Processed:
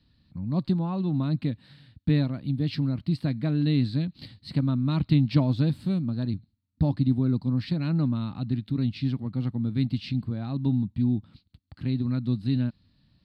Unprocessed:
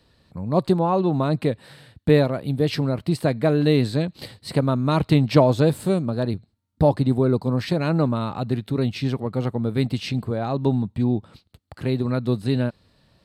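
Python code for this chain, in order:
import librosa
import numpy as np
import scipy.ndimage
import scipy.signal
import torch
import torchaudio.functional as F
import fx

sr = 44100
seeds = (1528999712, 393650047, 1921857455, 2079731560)

y = fx.curve_eq(x, sr, hz=(280.0, 420.0, 4500.0, 6600.0), db=(0, -17, -3, -19))
y = F.gain(torch.from_numpy(y), -2.5).numpy()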